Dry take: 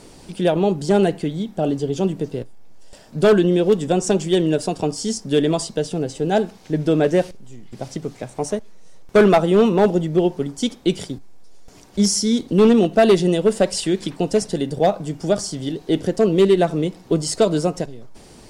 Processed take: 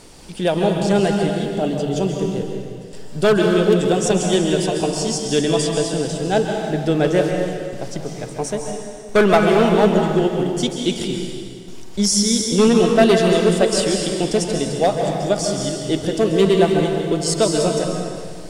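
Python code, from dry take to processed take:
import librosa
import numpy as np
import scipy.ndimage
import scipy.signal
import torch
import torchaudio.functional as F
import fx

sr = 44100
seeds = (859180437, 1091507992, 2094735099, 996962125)

y = fx.peak_eq(x, sr, hz=270.0, db=-5.0, octaves=3.0)
y = fx.rev_plate(y, sr, seeds[0], rt60_s=2.0, hf_ratio=0.9, predelay_ms=120, drr_db=1.5)
y = y * librosa.db_to_amplitude(2.5)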